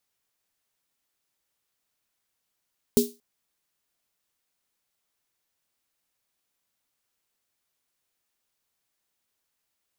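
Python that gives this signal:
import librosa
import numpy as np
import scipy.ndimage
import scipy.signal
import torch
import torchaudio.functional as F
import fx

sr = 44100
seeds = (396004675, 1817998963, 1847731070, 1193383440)

y = fx.drum_snare(sr, seeds[0], length_s=0.23, hz=240.0, second_hz=410.0, noise_db=-8.0, noise_from_hz=3700.0, decay_s=0.24, noise_decay_s=0.28)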